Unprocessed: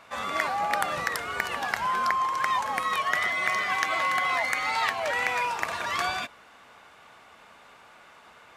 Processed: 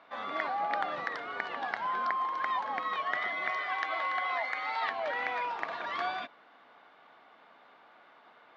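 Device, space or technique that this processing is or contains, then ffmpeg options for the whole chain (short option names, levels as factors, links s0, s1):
kitchen radio: -filter_complex "[0:a]highpass=210,equalizer=f=290:t=q:w=4:g=5,equalizer=f=720:t=q:w=4:g=4,equalizer=f=2600:t=q:w=4:g=-6,lowpass=f=3900:w=0.5412,lowpass=f=3900:w=1.3066,asettb=1/sr,asplit=3[s0][s1][s2];[s0]atrim=end=3.514[s3];[s1]atrim=start=3.51:end=4.83,asetpts=PTS-STARTPTS,afade=t=in:d=0.004:c=qsin,afade=t=out:st=1.316:d=0.004:c=qsin,equalizer=f=190:w=1.2:g=-12.5[s4];[s2]atrim=start=4.826[s5];[s3][s4]acrossfade=d=0.004:c1=hsin:c2=qsin[s6];[s6][s5]acrossfade=d=0.004:c1=qsin:c2=hsin,volume=0.501"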